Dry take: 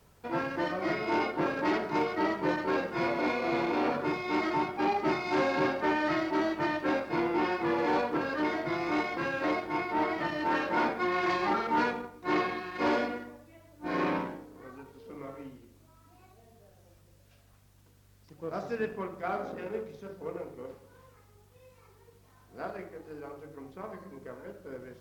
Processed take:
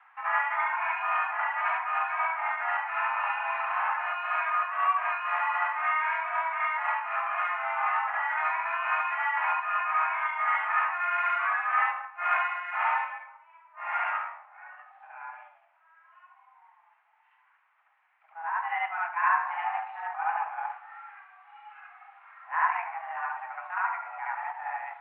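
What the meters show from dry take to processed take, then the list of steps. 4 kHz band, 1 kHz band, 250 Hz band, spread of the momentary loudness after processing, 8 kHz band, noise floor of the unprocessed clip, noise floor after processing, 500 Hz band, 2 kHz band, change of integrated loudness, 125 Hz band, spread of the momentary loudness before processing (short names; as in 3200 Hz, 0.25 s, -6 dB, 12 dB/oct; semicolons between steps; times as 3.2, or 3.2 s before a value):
-6.0 dB, +5.5 dB, under -40 dB, 10 LU, n/a, -61 dBFS, -66 dBFS, -12.5 dB, +6.0 dB, +2.0 dB, under -40 dB, 17 LU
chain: vocal rider within 10 dB 0.5 s; reverse echo 71 ms -4 dB; mistuned SSB +330 Hz 540–2100 Hz; gain +4 dB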